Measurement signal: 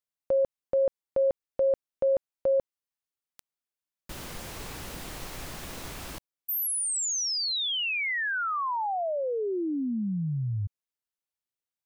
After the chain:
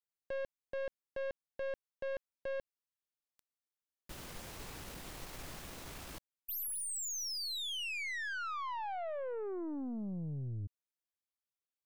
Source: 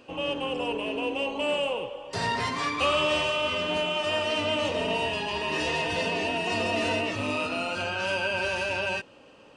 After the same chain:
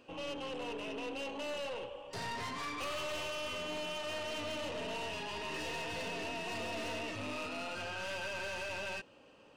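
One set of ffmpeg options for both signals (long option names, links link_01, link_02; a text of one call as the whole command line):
ffmpeg -i in.wav -af "aeval=exprs='(tanh(31.6*val(0)+0.35)-tanh(0.35))/31.6':channel_layout=same,volume=-6.5dB" out.wav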